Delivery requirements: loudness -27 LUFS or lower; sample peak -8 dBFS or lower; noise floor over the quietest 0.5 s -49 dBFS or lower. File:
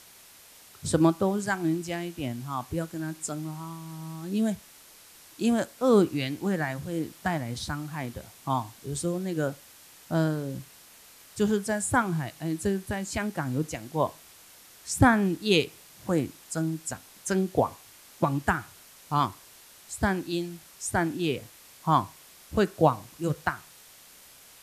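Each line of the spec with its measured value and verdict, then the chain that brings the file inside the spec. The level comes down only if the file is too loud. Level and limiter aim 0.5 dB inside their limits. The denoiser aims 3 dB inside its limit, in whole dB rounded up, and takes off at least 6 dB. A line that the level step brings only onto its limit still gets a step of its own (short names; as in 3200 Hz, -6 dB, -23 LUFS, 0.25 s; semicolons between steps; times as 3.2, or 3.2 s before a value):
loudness -28.5 LUFS: OK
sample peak -5.5 dBFS: fail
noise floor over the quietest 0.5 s -53 dBFS: OK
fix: limiter -8.5 dBFS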